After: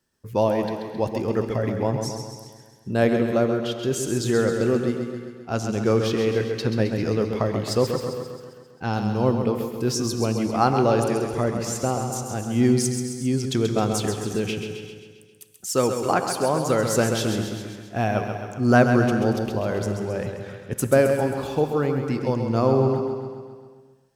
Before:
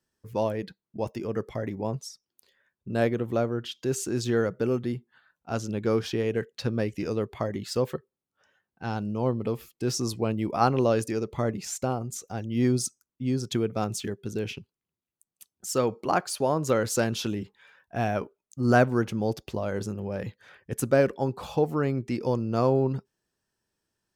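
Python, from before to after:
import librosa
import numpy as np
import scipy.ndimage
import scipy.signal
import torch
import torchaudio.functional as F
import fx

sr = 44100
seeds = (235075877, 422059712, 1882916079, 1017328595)

y = fx.echo_feedback(x, sr, ms=133, feedback_pct=59, wet_db=-7.5)
y = fx.rev_gated(y, sr, seeds[0], gate_ms=410, shape='flat', drr_db=9.5)
y = fx.rider(y, sr, range_db=3, speed_s=2.0)
y = fx.high_shelf(y, sr, hz=5900.0, db=7.0, at=(8.93, 9.45))
y = y * 10.0 ** (3.0 / 20.0)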